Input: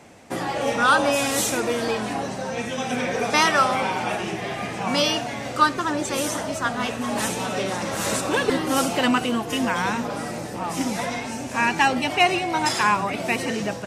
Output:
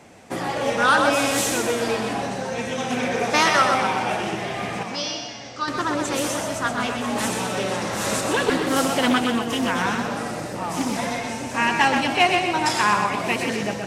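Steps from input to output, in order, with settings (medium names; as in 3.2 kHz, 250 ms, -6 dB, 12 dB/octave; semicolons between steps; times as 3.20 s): 4.83–5.68 s: four-pole ladder low-pass 6.3 kHz, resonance 55%; thinning echo 125 ms, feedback 48%, high-pass 190 Hz, level -5.5 dB; loudspeaker Doppler distortion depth 0.2 ms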